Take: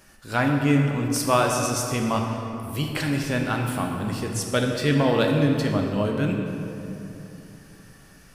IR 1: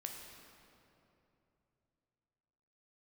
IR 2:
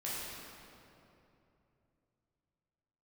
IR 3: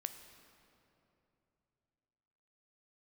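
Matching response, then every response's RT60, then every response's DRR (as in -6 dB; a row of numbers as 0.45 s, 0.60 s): 1; 3.0 s, 2.9 s, 3.0 s; 1.0 dB, -8.5 dB, 8.0 dB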